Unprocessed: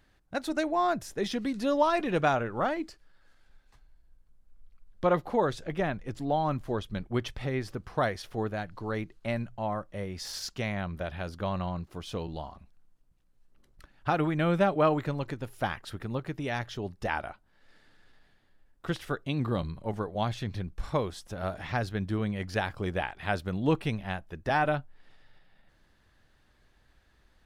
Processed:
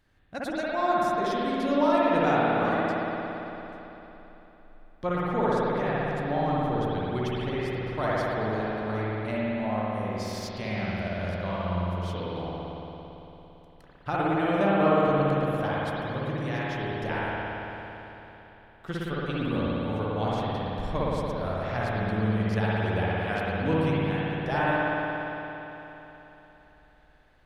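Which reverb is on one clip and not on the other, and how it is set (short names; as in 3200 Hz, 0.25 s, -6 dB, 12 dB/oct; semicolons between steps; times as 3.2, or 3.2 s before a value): spring tank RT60 3.6 s, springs 56 ms, chirp 60 ms, DRR -7.5 dB; gain -4.5 dB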